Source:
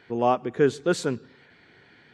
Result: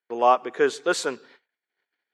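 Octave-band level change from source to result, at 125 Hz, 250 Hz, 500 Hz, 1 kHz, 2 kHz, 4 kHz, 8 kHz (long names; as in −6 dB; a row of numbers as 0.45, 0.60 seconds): −17.0, −5.5, +0.5, +5.0, +5.0, +4.5, +4.5 decibels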